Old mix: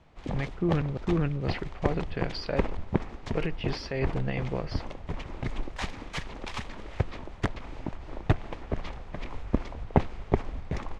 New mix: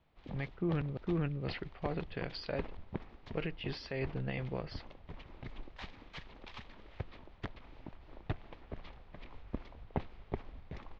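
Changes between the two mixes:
background -7.0 dB; master: add ladder low-pass 5100 Hz, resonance 30%

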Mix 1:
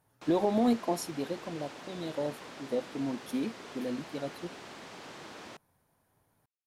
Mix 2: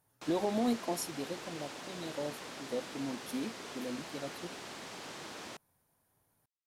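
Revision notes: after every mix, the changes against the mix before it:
speech -5.0 dB; master: add high shelf 4800 Hz +8 dB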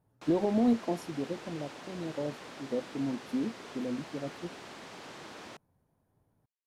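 speech: add tilt shelf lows +7.5 dB, about 810 Hz; master: add high shelf 4800 Hz -8 dB

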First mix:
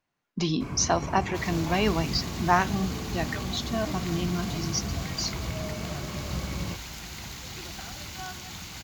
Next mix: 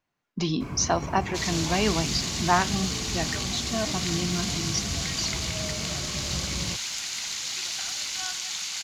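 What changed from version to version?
second sound: add weighting filter ITU-R 468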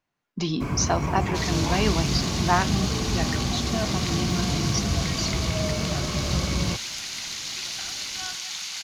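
first sound +7.5 dB; second sound: add bell 7400 Hz -6.5 dB 0.24 oct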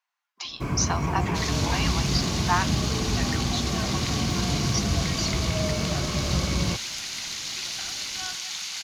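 speech: add Chebyshev high-pass 900 Hz, order 3

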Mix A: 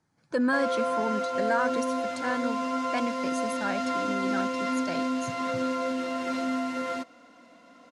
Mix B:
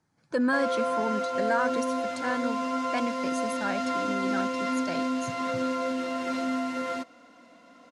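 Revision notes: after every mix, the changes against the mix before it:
none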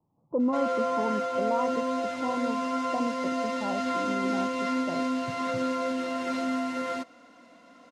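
speech: add steep low-pass 1100 Hz 72 dB/oct

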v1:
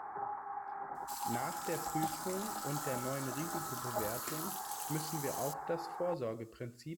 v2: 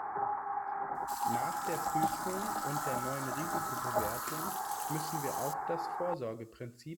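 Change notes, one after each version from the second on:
first sound +6.0 dB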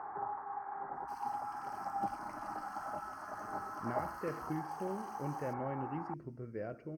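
speech: entry +2.55 s; first sound -4.5 dB; master: add running mean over 12 samples

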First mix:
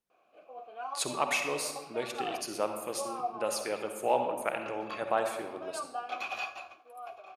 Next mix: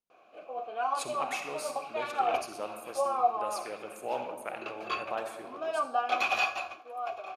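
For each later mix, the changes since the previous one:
speech -6.5 dB; background +8.5 dB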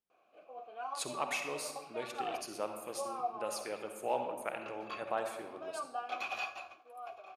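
background -10.5 dB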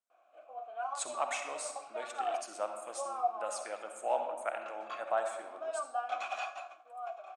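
master: add speaker cabinet 420–8700 Hz, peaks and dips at 420 Hz -9 dB, 670 Hz +8 dB, 1400 Hz +5 dB, 2600 Hz -4 dB, 4600 Hz -7 dB, 8000 Hz +10 dB

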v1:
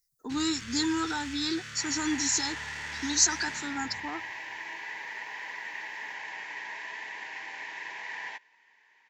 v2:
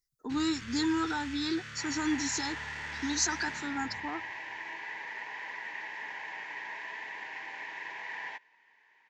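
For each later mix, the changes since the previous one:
master: add high shelf 4800 Hz -11.5 dB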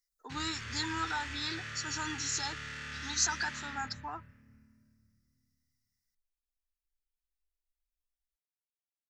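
speech: add HPF 640 Hz 12 dB/oct; first sound: send +9.5 dB; second sound: muted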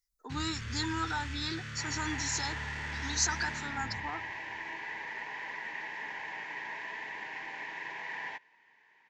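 first sound: send -9.0 dB; second sound: unmuted; master: add low shelf 260 Hz +9.5 dB

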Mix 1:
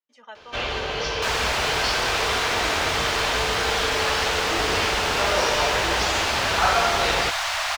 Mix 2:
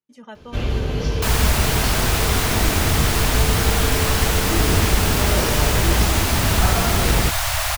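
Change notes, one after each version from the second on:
first sound -7.0 dB; master: remove three-band isolator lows -22 dB, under 540 Hz, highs -19 dB, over 6500 Hz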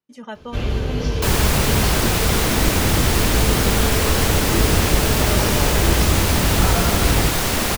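speech +5.5 dB; second sound: remove Chebyshev band-stop 110–620 Hz, order 4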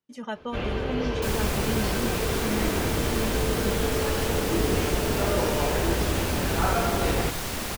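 first sound: add tone controls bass -10 dB, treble -14 dB; second sound -11.0 dB

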